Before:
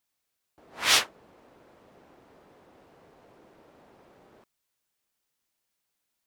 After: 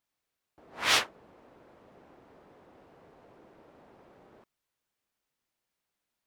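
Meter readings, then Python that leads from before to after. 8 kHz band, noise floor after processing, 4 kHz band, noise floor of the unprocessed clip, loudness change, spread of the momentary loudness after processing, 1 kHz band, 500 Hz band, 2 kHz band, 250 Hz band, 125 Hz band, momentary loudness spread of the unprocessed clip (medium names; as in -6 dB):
-6.0 dB, under -85 dBFS, -4.0 dB, -81 dBFS, -3.5 dB, 12 LU, -0.5 dB, 0.0 dB, -2.0 dB, 0.0 dB, 0.0 dB, 12 LU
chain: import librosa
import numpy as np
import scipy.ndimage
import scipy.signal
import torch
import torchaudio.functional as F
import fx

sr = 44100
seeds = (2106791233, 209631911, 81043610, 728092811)

y = fx.high_shelf(x, sr, hz=3800.0, db=-8.0)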